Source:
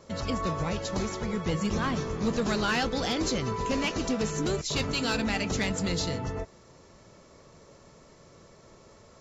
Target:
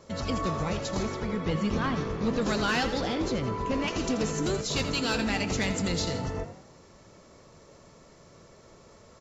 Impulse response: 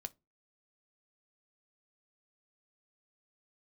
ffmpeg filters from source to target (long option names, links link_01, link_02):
-filter_complex "[0:a]asettb=1/sr,asplit=3[link_01][link_02][link_03];[link_01]atrim=end=1.034[link_04];[link_02]atrim=start=1.03:end=2.41,asetpts=PTS-STARTPTS,afade=type=in:duration=0.004:curve=qsin,afade=type=out:start_time=1.376:duration=0.004:curve=qsin,lowpass=4500[link_05];[link_03]atrim=start=2.406[link_06];[link_04][link_05]acrossfade=duration=0.004:curve1=hsin:curve2=qsin[link_07];[link_07][link_06]acrossfade=duration=0.004:curve1=qsin:curve2=hsin,asettb=1/sr,asplit=3[link_08][link_09][link_10];[link_08]atrim=end=3.014[link_11];[link_09]atrim=start=3.01:end=3.88,asetpts=PTS-STARTPTS,afade=type=in:duration=0.004:curve=qsin,afade=type=out:start_time=0.866:duration=0.004:curve=qsin,aemphasis=mode=reproduction:type=75kf[link_12];[link_10]atrim=start=3.876[link_13];[link_11][link_12]acrossfade=duration=0.004:curve1=hsin:curve2=qsin[link_14];[link_14][link_13]acrossfade=duration=0.004:curve1=qsin:curve2=hsin,asplit=5[link_15][link_16][link_17][link_18][link_19];[link_16]adelay=83,afreqshift=49,volume=-11dB[link_20];[link_17]adelay=166,afreqshift=98,volume=-18.3dB[link_21];[link_18]adelay=249,afreqshift=147,volume=-25.7dB[link_22];[link_19]adelay=332,afreqshift=196,volume=-33dB[link_23];[link_15][link_20][link_21][link_22][link_23]amix=inputs=5:normalize=0"